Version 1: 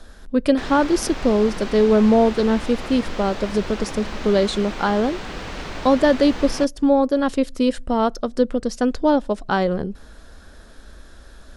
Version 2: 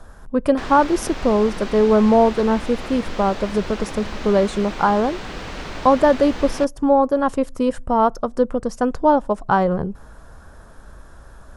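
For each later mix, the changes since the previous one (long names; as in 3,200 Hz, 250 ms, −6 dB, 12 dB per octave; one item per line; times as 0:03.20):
speech: add graphic EQ with 10 bands 125 Hz +10 dB, 250 Hz −4 dB, 1,000 Hz +8 dB, 2,000 Hz −3 dB, 4,000 Hz −10 dB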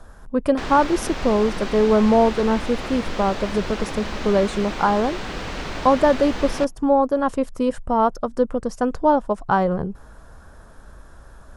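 speech: send off
background: send +11.0 dB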